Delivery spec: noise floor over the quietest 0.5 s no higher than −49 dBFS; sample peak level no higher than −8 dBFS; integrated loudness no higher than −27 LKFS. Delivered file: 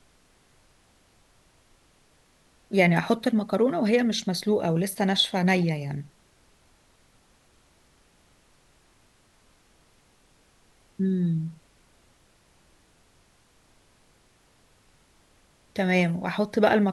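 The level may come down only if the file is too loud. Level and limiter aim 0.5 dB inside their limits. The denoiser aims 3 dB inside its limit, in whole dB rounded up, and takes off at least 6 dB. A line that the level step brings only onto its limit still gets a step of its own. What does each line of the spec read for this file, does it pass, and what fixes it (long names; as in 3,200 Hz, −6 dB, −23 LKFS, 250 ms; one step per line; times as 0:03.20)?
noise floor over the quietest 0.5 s −62 dBFS: in spec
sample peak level −6.5 dBFS: out of spec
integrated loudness −24.5 LKFS: out of spec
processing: level −3 dB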